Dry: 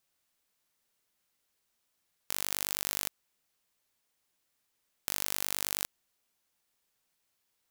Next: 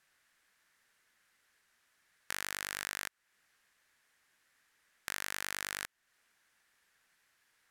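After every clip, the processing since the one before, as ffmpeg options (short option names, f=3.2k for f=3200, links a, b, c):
-af "acompressor=threshold=-44dB:ratio=2,lowpass=12k,equalizer=f=1.7k:t=o:w=0.93:g=14,volume=3.5dB"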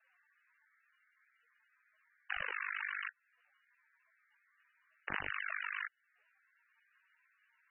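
-filter_complex "[0:a]acrossover=split=240|1000|6800[a][b][c][d];[a]acrusher=samples=40:mix=1:aa=0.000001:lfo=1:lforange=64:lforate=1.9[e];[e][b][c][d]amix=inputs=4:normalize=0,flanger=delay=16.5:depth=4.7:speed=0.32,volume=5dB" -ar 24000 -c:a libmp3lame -b:a 8k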